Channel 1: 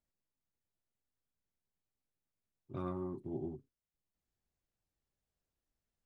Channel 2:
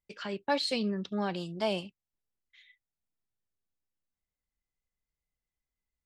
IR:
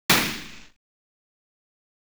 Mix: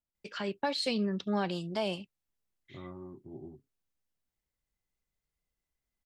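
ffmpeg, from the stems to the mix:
-filter_complex "[0:a]highshelf=frequency=3200:gain=-11,volume=-5.5dB[link_01];[1:a]adelay=150,volume=1.5dB[link_02];[link_01][link_02]amix=inputs=2:normalize=0,alimiter=limit=-20.5dB:level=0:latency=1:release=247"

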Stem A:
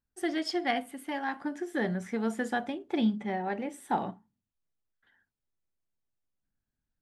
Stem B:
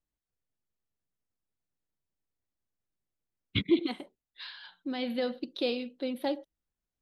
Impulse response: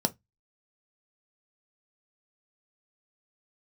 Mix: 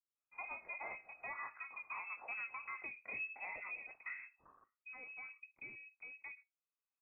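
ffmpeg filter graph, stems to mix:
-filter_complex "[0:a]highpass=190,flanger=delay=18:depth=5.6:speed=2.9,adelay=150,volume=-5.5dB,asplit=2[link_01][link_02];[link_02]volume=-17.5dB[link_03];[1:a]afwtdn=0.00501,acompressor=threshold=-35dB:ratio=1.5,volume=-17.5dB,asplit=3[link_04][link_05][link_06];[link_05]volume=-10.5dB[link_07];[link_06]apad=whole_len=316188[link_08];[link_01][link_08]sidechaincompress=threshold=-57dB:ratio=8:attack=16:release=945[link_09];[2:a]atrim=start_sample=2205[link_10];[link_03][link_07]amix=inputs=2:normalize=0[link_11];[link_11][link_10]afir=irnorm=-1:irlink=0[link_12];[link_09][link_04][link_12]amix=inputs=3:normalize=0,tiltshelf=frequency=1400:gain=-9,lowpass=frequency=2400:width_type=q:width=0.5098,lowpass=frequency=2400:width_type=q:width=0.6013,lowpass=frequency=2400:width_type=q:width=0.9,lowpass=frequency=2400:width_type=q:width=2.563,afreqshift=-2800,alimiter=level_in=11.5dB:limit=-24dB:level=0:latency=1:release=129,volume=-11.5dB"

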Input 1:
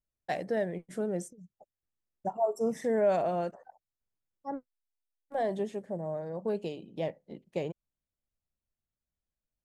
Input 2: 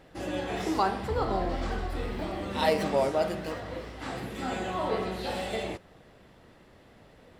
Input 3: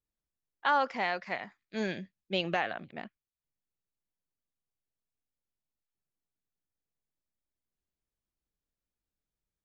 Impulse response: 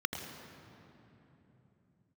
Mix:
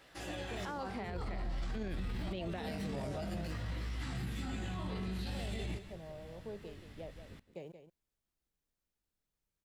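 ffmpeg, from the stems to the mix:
-filter_complex "[0:a]aeval=exprs='val(0)*gte(abs(val(0)),0.00237)':channel_layout=same,volume=-13.5dB,asplit=2[link_01][link_02];[link_02]volume=-10.5dB[link_03];[1:a]tiltshelf=frequency=870:gain=-7.5,flanger=delay=16:depth=5.3:speed=0.5,asubboost=boost=11.5:cutoff=160,volume=-8.5dB,asplit=2[link_04][link_05];[link_05]volume=-11.5dB[link_06];[2:a]volume=-5.5dB[link_07];[link_04][link_07]amix=inputs=2:normalize=0,acontrast=88,alimiter=limit=-21dB:level=0:latency=1:release=200,volume=0dB[link_08];[link_03][link_06]amix=inputs=2:normalize=0,aecho=0:1:178:1[link_09];[link_01][link_08][link_09]amix=inputs=3:normalize=0,acrossover=split=490[link_10][link_11];[link_11]acompressor=threshold=-47dB:ratio=2.5[link_12];[link_10][link_12]amix=inputs=2:normalize=0,alimiter=level_in=7.5dB:limit=-24dB:level=0:latency=1:release=17,volume=-7.5dB"

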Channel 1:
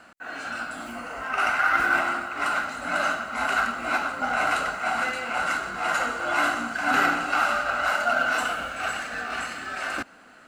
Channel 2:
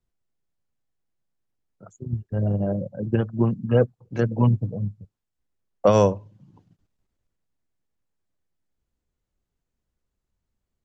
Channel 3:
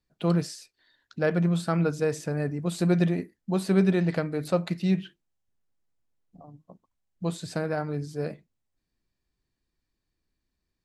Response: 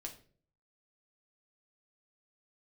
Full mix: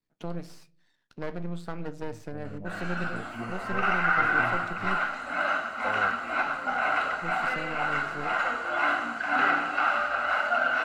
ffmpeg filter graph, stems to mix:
-filter_complex "[0:a]acrossover=split=3700[link_01][link_02];[link_02]acompressor=threshold=-50dB:ratio=4:attack=1:release=60[link_03];[link_01][link_03]amix=inputs=2:normalize=0,lowshelf=frequency=320:gain=-7.5,adelay=2450,volume=-1dB[link_04];[1:a]volume=-11.5dB[link_05];[2:a]aeval=exprs='max(val(0),0)':channel_layout=same,volume=-2dB,asplit=2[link_06][link_07];[link_07]volume=-10.5dB[link_08];[link_05][link_06]amix=inputs=2:normalize=0,highpass=110,acompressor=threshold=-39dB:ratio=2.5,volume=0dB[link_09];[3:a]atrim=start_sample=2205[link_10];[link_08][link_10]afir=irnorm=-1:irlink=0[link_11];[link_04][link_09][link_11]amix=inputs=3:normalize=0,highshelf=frequency=5900:gain=-9"

